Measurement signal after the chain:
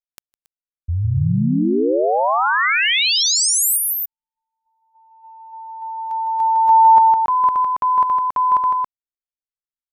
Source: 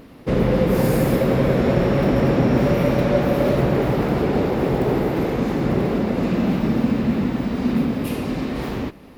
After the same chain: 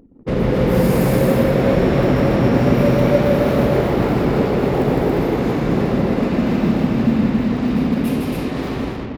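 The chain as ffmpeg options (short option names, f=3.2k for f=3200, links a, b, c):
-af "aecho=1:1:157.4|277:0.631|0.708,anlmdn=1.58"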